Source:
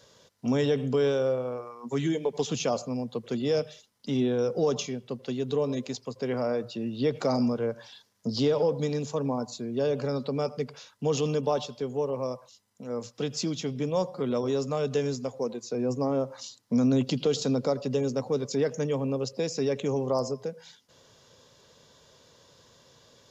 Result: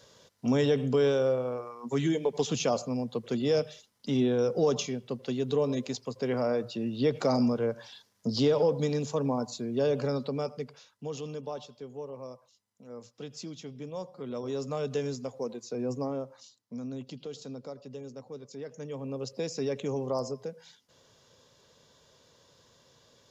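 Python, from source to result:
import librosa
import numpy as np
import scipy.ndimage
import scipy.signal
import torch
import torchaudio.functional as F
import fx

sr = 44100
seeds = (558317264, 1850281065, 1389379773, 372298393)

y = fx.gain(x, sr, db=fx.line((10.07, 0.0), (11.15, -11.0), (14.14, -11.0), (14.7, -4.0), (15.98, -4.0), (16.62, -15.0), (18.6, -15.0), (19.33, -4.0)))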